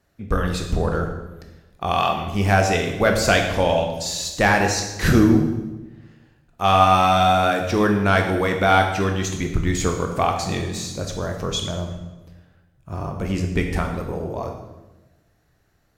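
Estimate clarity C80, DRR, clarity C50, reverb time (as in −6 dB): 8.0 dB, 3.0 dB, 6.0 dB, 1.1 s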